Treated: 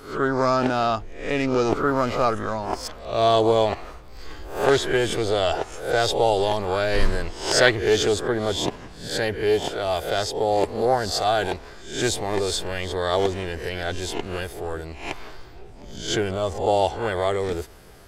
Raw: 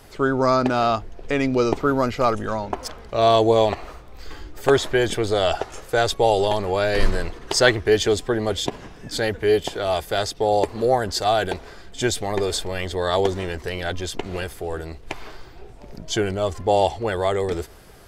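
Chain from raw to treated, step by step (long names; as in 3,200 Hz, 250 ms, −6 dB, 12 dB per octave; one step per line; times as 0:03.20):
peak hold with a rise ahead of every peak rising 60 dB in 0.48 s
highs frequency-modulated by the lows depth 0.15 ms
level −2.5 dB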